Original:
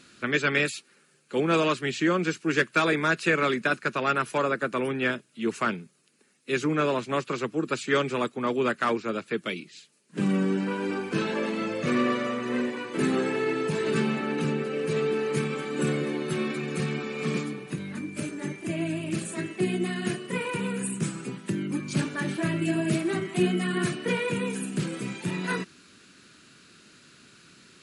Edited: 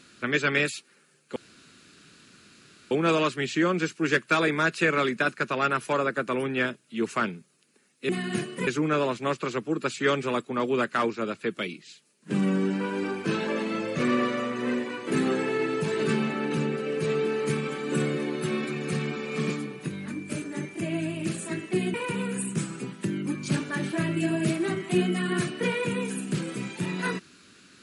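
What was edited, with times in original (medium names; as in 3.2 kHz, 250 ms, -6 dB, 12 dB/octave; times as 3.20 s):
1.36 s: insert room tone 1.55 s
19.81–20.39 s: move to 6.54 s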